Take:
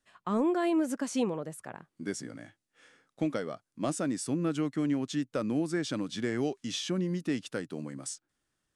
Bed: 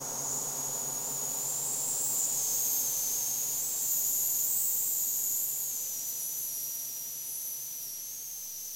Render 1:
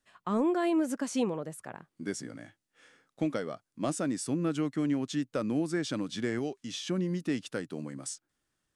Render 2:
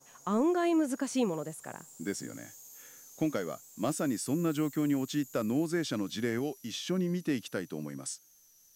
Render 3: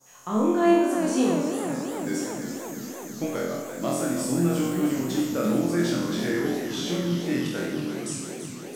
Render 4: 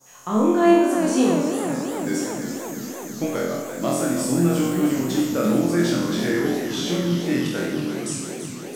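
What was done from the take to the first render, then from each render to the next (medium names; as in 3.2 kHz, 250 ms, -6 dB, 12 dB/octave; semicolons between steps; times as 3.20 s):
6.39–6.87 s: gain -3.5 dB
add bed -22 dB
on a send: flutter echo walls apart 4 m, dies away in 0.96 s; on the sum: modulated delay 335 ms, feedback 76%, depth 159 cents, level -9.5 dB
trim +4 dB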